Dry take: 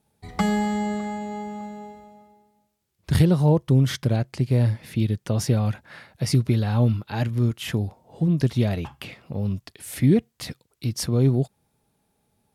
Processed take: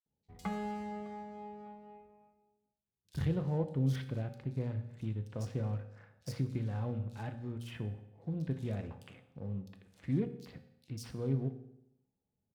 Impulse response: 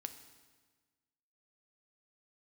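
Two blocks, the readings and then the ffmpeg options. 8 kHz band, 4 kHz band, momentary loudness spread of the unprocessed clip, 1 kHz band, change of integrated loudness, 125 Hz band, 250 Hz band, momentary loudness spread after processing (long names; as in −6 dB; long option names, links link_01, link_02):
below −20 dB, −20.0 dB, 16 LU, −13.5 dB, −15.0 dB, −14.5 dB, −15.0 dB, 18 LU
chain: -filter_complex "[0:a]adynamicsmooth=sensitivity=8:basefreq=640,acrossover=split=3900[link_01][link_02];[link_01]adelay=60[link_03];[link_03][link_02]amix=inputs=2:normalize=0[link_04];[1:a]atrim=start_sample=2205,asetrate=79380,aresample=44100[link_05];[link_04][link_05]afir=irnorm=-1:irlink=0,volume=-6.5dB"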